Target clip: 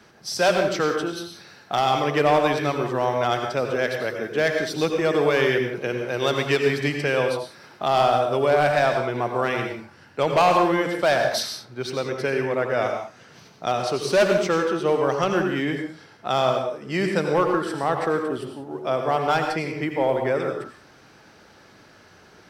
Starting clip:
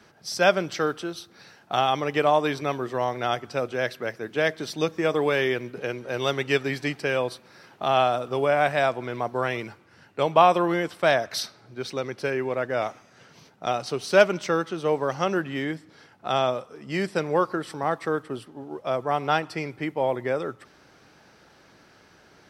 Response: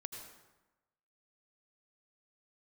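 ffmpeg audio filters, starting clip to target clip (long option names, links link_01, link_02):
-filter_complex "[0:a]acontrast=77,volume=8.5dB,asoftclip=hard,volume=-8.5dB[link_01];[1:a]atrim=start_sample=2205,afade=type=out:start_time=0.25:duration=0.01,atrim=end_sample=11466[link_02];[link_01][link_02]afir=irnorm=-1:irlink=0"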